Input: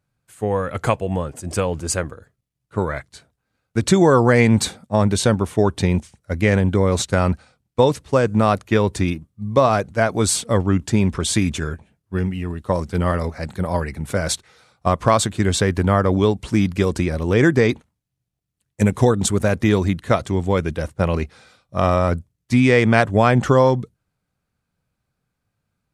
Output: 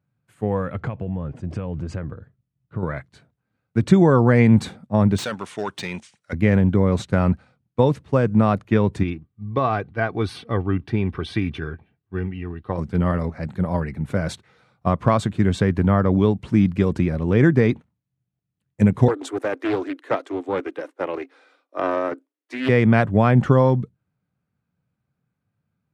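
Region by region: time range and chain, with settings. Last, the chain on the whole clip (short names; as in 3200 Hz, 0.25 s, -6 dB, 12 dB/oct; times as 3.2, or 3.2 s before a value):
0.75–2.83 LPF 4600 Hz + low shelf 170 Hz +8.5 dB + compressor 8:1, threshold -23 dBFS
5.18–6.33 weighting filter ITU-R 468 + hard clip -16 dBFS
9.03–12.78 running mean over 6 samples + tilt shelf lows -4 dB, about 1400 Hz + comb 2.6 ms, depth 45%
19.08–22.69 de-esser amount 20% + Chebyshev high-pass 270 Hz, order 8 + Doppler distortion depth 0.6 ms
whole clip: HPF 130 Hz 12 dB/oct; tone controls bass +10 dB, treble -13 dB; gain -4 dB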